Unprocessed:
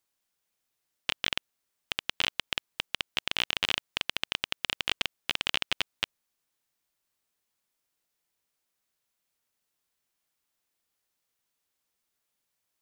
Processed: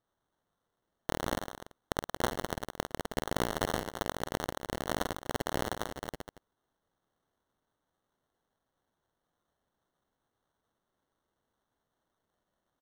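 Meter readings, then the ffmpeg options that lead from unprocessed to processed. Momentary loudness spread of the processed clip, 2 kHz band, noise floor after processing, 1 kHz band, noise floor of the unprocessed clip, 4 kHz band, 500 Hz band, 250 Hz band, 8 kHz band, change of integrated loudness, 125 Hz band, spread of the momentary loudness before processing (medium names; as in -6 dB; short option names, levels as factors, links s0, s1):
10 LU, -7.5 dB, -85 dBFS, +5.5 dB, -82 dBFS, -13.5 dB, +10.5 dB, +10.5 dB, +0.5 dB, -5.0 dB, +10.0 dB, 7 LU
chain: -af "aecho=1:1:50|107.5|173.6|249.7|337.1:0.631|0.398|0.251|0.158|0.1,acrusher=samples=18:mix=1:aa=0.000001,volume=0.631"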